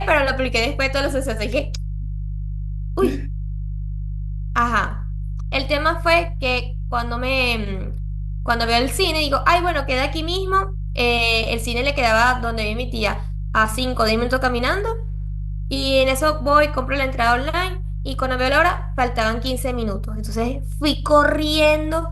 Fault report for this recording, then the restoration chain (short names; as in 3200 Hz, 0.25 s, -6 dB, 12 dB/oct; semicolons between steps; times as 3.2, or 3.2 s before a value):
hum 50 Hz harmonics 3 -26 dBFS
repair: de-hum 50 Hz, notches 3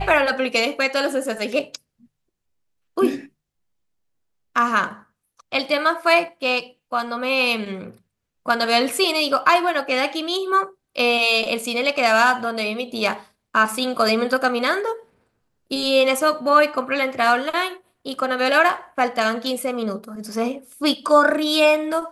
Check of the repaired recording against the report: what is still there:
none